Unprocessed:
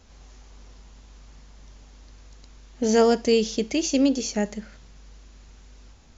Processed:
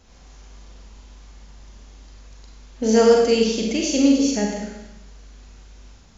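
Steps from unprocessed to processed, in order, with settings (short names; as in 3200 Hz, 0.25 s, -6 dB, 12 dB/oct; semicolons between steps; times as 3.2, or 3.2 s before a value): Schroeder reverb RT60 0.96 s, combs from 32 ms, DRR -1 dB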